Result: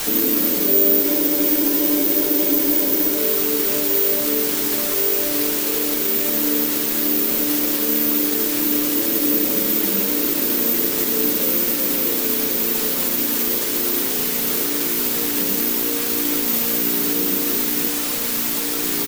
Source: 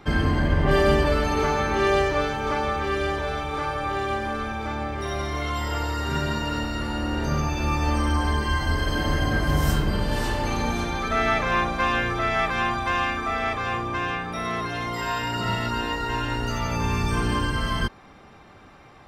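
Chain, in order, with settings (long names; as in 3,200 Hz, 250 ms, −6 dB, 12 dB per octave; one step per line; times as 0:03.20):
Chebyshev band-pass filter 190–550 Hz, order 5
on a send: feedback delay with all-pass diffusion 1,774 ms, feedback 45%, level −5 dB
on the sum: bit-depth reduction 6 bits, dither triangular
bad sample-rate conversion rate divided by 3×, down none, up zero stuff
comb filter 6.7 ms, depth 44%
in parallel at +1.5 dB: brickwall limiter −14 dBFS, peak gain reduction 10 dB
on the sum: frozen spectrum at 0:01.05, 2.13 s
level −1 dB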